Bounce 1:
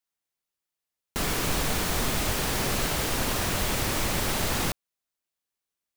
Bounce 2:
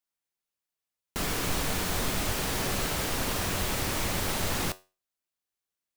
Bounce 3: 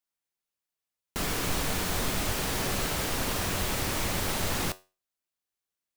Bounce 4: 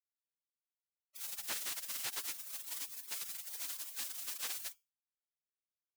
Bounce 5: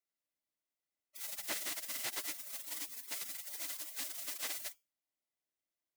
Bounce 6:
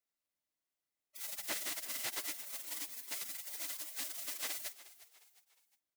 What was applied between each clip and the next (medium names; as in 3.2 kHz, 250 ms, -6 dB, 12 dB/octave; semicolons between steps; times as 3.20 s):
feedback comb 93 Hz, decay 0.3 s, harmonics all, mix 50%; trim +1.5 dB
no audible change
spectral gate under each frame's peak -25 dB weak; trim -3 dB
small resonant body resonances 300/610/2000 Hz, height 9 dB, ringing for 25 ms
frequency-shifting echo 357 ms, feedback 41%, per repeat +64 Hz, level -17 dB